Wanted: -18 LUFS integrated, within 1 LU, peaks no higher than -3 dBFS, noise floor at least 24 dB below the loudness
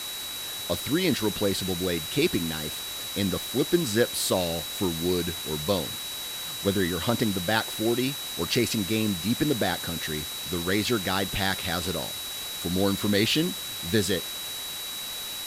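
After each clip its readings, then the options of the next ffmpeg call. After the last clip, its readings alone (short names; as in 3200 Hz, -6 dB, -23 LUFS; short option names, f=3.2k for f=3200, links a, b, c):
steady tone 3900 Hz; tone level -35 dBFS; noise floor -35 dBFS; noise floor target -51 dBFS; loudness -27.0 LUFS; peak -7.5 dBFS; loudness target -18.0 LUFS
-> -af "bandreject=f=3.9k:w=30"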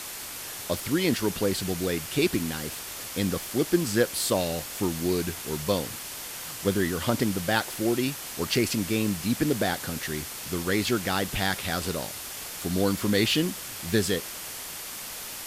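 steady tone none; noise floor -38 dBFS; noise floor target -52 dBFS
-> -af "afftdn=nr=14:nf=-38"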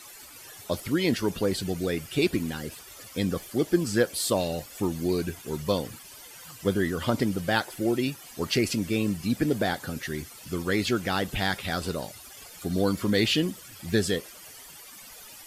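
noise floor -47 dBFS; noise floor target -52 dBFS
-> -af "afftdn=nr=6:nf=-47"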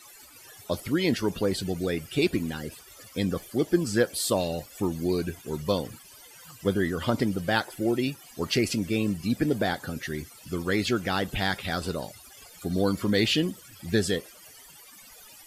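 noise floor -50 dBFS; noise floor target -52 dBFS
-> -af "afftdn=nr=6:nf=-50"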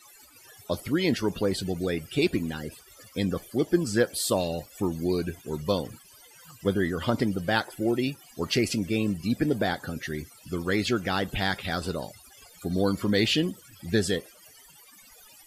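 noise floor -54 dBFS; loudness -28.0 LUFS; peak -8.0 dBFS; loudness target -18.0 LUFS
-> -af "volume=10dB,alimiter=limit=-3dB:level=0:latency=1"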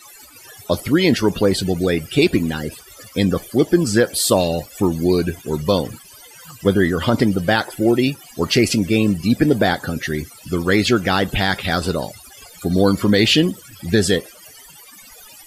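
loudness -18.5 LUFS; peak -3.0 dBFS; noise floor -44 dBFS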